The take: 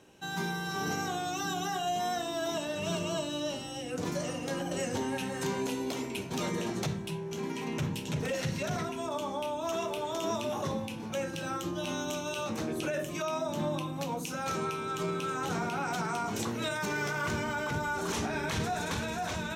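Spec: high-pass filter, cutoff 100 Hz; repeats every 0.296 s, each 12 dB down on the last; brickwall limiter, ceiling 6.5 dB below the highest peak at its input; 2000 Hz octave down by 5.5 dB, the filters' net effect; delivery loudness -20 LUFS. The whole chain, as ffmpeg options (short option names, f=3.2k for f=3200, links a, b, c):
-af "highpass=100,equalizer=f=2k:t=o:g=-8.5,alimiter=level_in=3dB:limit=-24dB:level=0:latency=1,volume=-3dB,aecho=1:1:296|592|888:0.251|0.0628|0.0157,volume=16dB"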